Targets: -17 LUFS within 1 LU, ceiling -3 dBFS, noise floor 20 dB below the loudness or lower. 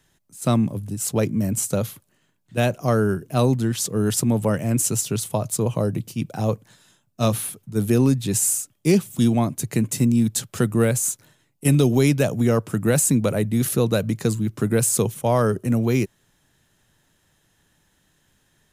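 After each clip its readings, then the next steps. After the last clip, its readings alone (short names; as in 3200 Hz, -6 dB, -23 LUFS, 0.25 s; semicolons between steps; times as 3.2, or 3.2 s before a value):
loudness -21.5 LUFS; peak -5.5 dBFS; loudness target -17.0 LUFS
-> gain +4.5 dB; limiter -3 dBFS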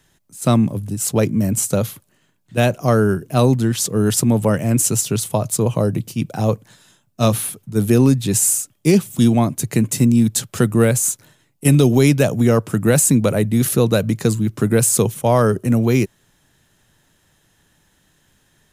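loudness -17.0 LUFS; peak -3.0 dBFS; noise floor -61 dBFS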